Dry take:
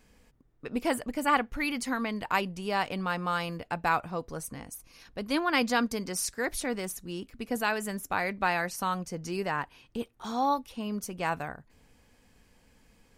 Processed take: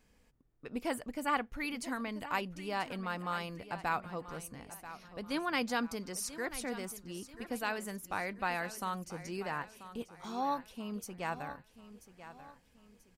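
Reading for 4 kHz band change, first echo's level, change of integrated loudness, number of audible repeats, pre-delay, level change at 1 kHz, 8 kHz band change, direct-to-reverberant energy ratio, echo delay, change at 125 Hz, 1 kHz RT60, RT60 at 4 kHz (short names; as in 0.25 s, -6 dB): -7.0 dB, -14.0 dB, -7.0 dB, 3, none, -7.0 dB, -7.0 dB, none, 0.986 s, -7.0 dB, none, none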